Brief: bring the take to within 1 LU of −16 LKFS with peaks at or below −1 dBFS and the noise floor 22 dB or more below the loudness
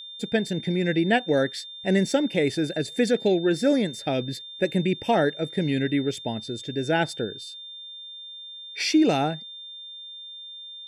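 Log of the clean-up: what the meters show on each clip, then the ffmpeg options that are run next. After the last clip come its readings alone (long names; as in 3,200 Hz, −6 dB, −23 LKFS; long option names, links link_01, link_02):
interfering tone 3,600 Hz; level of the tone −38 dBFS; integrated loudness −24.5 LKFS; sample peak −9.0 dBFS; target loudness −16.0 LKFS
→ -af "bandreject=frequency=3600:width=30"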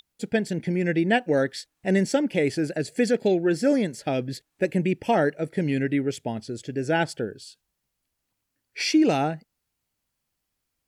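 interfering tone none found; integrated loudness −25.0 LKFS; sample peak −9.0 dBFS; target loudness −16.0 LKFS
→ -af "volume=9dB,alimiter=limit=-1dB:level=0:latency=1"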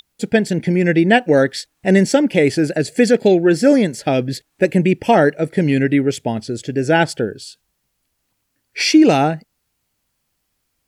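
integrated loudness −16.0 LKFS; sample peak −1.0 dBFS; background noise floor −71 dBFS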